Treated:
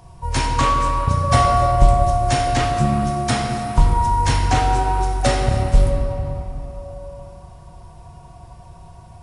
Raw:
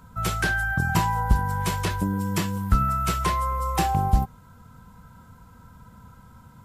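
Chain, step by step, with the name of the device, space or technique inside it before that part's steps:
slowed and reverbed (speed change −28%; convolution reverb RT60 3.2 s, pre-delay 3 ms, DRR 1 dB)
level +5 dB

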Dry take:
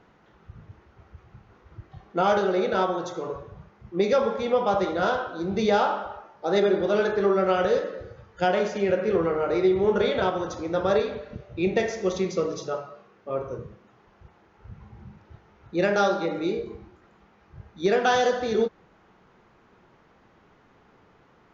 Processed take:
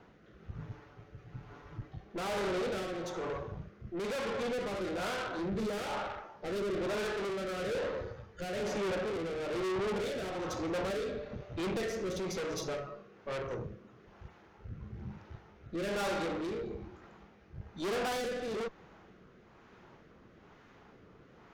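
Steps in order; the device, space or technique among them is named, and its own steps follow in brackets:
0:00.58–0:01.90: comb filter 6.9 ms, depth 80%
overdriven rotary cabinet (tube saturation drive 36 dB, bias 0.5; rotating-speaker cabinet horn 1.1 Hz)
level +4.5 dB

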